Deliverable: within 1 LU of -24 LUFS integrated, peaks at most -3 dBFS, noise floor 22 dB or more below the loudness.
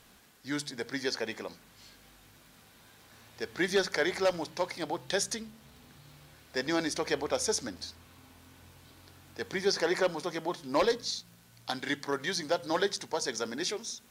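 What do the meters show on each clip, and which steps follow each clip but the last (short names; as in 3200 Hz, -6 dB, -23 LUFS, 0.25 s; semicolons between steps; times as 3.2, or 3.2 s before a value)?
ticks 36/s; loudness -32.0 LUFS; peak -16.0 dBFS; loudness target -24.0 LUFS
-> de-click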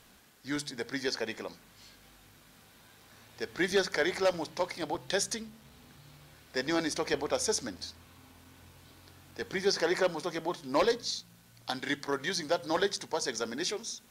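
ticks 0.071/s; loudness -32.0 LUFS; peak -15.5 dBFS; loudness target -24.0 LUFS
-> gain +8 dB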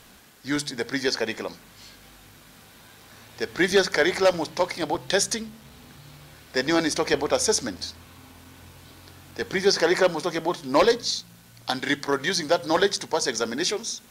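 loudness -24.0 LUFS; peak -7.5 dBFS; noise floor -51 dBFS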